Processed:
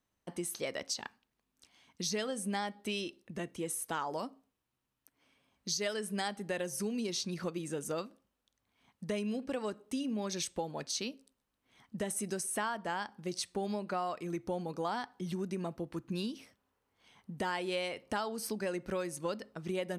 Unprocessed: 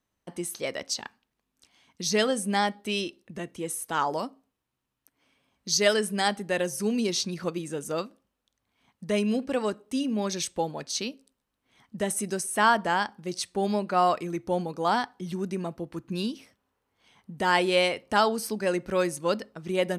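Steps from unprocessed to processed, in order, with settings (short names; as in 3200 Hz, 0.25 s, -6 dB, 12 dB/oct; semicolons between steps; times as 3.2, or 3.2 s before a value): compressor 6:1, threshold -30 dBFS, peak gain reduction 13.5 dB; gain -2.5 dB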